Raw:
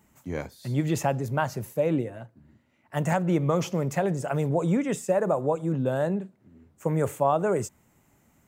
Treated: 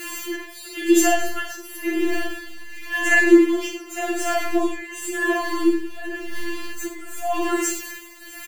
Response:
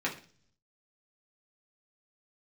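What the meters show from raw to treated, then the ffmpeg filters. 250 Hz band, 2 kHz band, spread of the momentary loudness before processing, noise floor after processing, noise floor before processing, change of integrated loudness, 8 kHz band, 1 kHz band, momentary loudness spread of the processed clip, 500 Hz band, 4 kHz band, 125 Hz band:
+7.5 dB, +15.5 dB, 10 LU, -40 dBFS, -65 dBFS, +5.0 dB, +13.0 dB, +2.0 dB, 16 LU, +2.0 dB, +13.0 dB, under -20 dB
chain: -filter_complex "[0:a]aeval=exprs='val(0)+0.5*0.015*sgn(val(0))':c=same,highshelf=f=2700:g=10.5,aecho=1:1:3.6:0.37,aecho=1:1:50|98|225:0.473|0.422|0.119[s0];[1:a]atrim=start_sample=2205,afade=t=out:st=0.38:d=0.01,atrim=end_sample=17199,asetrate=48510,aresample=44100[s1];[s0][s1]afir=irnorm=-1:irlink=0,asplit=2[s2][s3];[s3]alimiter=limit=0.251:level=0:latency=1,volume=0.841[s4];[s2][s4]amix=inputs=2:normalize=0,asubboost=boost=5:cutoff=59,tremolo=f=0.92:d=0.8,afftfilt=real='re*4*eq(mod(b,16),0)':imag='im*4*eq(mod(b,16),0)':win_size=2048:overlap=0.75"

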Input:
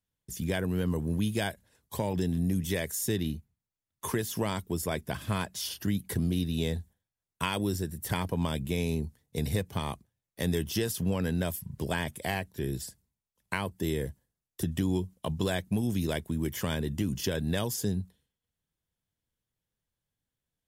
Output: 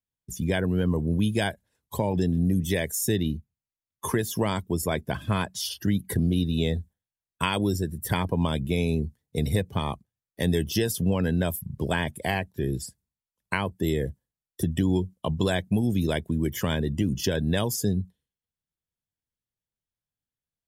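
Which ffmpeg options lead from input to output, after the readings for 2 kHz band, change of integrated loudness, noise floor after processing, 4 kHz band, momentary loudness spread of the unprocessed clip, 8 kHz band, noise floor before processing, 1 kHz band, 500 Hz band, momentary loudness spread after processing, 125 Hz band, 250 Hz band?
+4.5 dB, +5.0 dB, under -85 dBFS, +4.0 dB, 7 LU, +3.0 dB, under -85 dBFS, +5.0 dB, +5.0 dB, 7 LU, +5.0 dB, +5.0 dB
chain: -af "afftdn=nr=13:nf=-44,volume=1.78"

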